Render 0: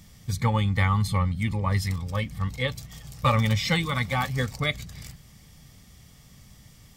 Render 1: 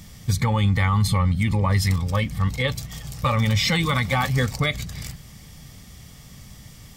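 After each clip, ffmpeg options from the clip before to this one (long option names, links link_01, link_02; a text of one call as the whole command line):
ffmpeg -i in.wav -af "alimiter=limit=-19.5dB:level=0:latency=1:release=46,volume=7.5dB" out.wav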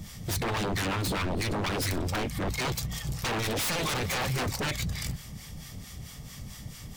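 ffmpeg -i in.wav -filter_complex "[0:a]asplit=2[link_01][link_02];[link_02]asoftclip=type=tanh:threshold=-20dB,volume=-4dB[link_03];[link_01][link_03]amix=inputs=2:normalize=0,acrossover=split=760[link_04][link_05];[link_04]aeval=exprs='val(0)*(1-0.7/2+0.7/2*cos(2*PI*4.5*n/s))':channel_layout=same[link_06];[link_05]aeval=exprs='val(0)*(1-0.7/2-0.7/2*cos(2*PI*4.5*n/s))':channel_layout=same[link_07];[link_06][link_07]amix=inputs=2:normalize=0,aeval=exprs='0.0596*(abs(mod(val(0)/0.0596+3,4)-2)-1)':channel_layout=same" out.wav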